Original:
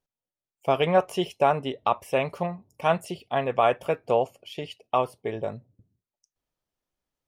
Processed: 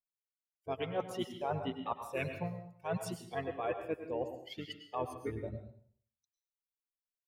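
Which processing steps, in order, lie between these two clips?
spectral dynamics exaggerated over time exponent 2
reversed playback
downward compressor 8 to 1, threshold −34 dBFS, peak gain reduction 17 dB
reversed playback
pitch-shifted copies added −7 semitones −7 dB
dense smooth reverb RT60 0.55 s, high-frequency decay 0.95×, pre-delay 90 ms, DRR 7.5 dB

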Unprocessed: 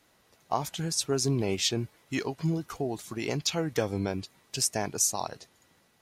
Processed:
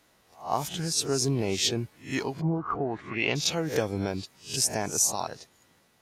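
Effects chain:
peak hold with a rise ahead of every peak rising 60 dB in 0.33 s
0:02.40–0:03.34: low-pass with resonance 720 Hz → 3,100 Hz, resonance Q 4.1

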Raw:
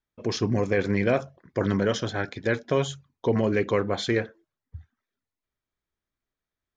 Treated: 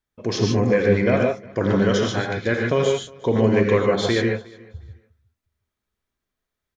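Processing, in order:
0:00.50–0:01.17: high-shelf EQ 4,800 Hz −8 dB
repeating echo 359 ms, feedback 19%, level −24 dB
reverb whose tail is shaped and stops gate 170 ms rising, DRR 0 dB
level +2.5 dB

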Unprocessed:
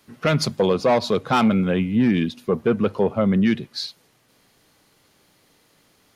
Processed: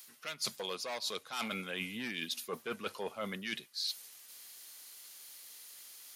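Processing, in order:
first difference
reversed playback
downward compressor 16 to 1, threshold −46 dBFS, peak gain reduction 23 dB
reversed playback
level +11.5 dB

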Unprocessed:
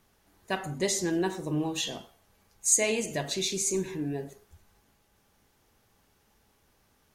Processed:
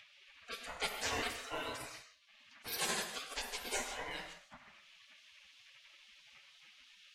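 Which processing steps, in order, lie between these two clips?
frequency inversion band by band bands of 500 Hz
low-pass that shuts in the quiet parts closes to 1,300 Hz, open at −25 dBFS
gate on every frequency bin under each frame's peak −30 dB weak
high-shelf EQ 4,200 Hz −10.5 dB, from 0:04.11 −2 dB
upward compression, threshold −59 dBFS
reverb whose tail is shaped and stops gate 190 ms flat, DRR 7 dB
level +14 dB

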